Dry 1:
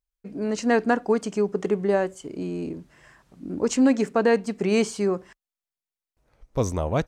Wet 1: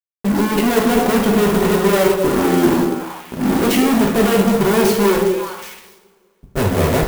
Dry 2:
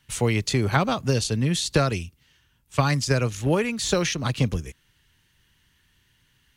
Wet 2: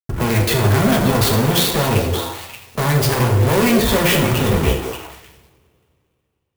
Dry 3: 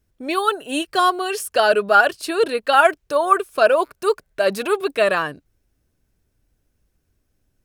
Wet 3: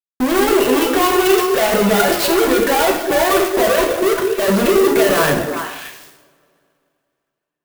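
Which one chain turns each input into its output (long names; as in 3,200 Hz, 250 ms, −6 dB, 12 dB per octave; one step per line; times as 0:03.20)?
high-pass filter 55 Hz 12 dB per octave
low-pass that shuts in the quiet parts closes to 490 Hz, open at −15 dBFS
gate on every frequency bin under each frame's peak −15 dB strong
parametric band 1,300 Hz −11.5 dB 0.41 octaves
in parallel at −2.5 dB: speech leveller within 3 dB 0.5 s
on the sum: fuzz pedal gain 44 dB, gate −44 dBFS
on a send: echo through a band-pass that steps 193 ms, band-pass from 400 Hz, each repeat 1.4 octaves, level −2 dB
on the sum: coupled-rooms reverb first 0.7 s, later 2.7 s, from −25 dB, DRR 0.5 dB
converter with an unsteady clock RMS 0.039 ms
level −4 dB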